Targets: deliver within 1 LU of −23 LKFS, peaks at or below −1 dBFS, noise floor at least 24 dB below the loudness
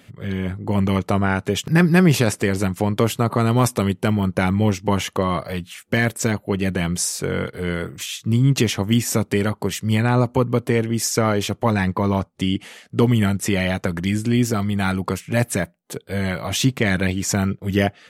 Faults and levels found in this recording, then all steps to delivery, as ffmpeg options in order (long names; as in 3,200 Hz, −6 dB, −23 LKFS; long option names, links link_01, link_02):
integrated loudness −21.0 LKFS; sample peak −4.5 dBFS; target loudness −23.0 LKFS
→ -af "volume=-2dB"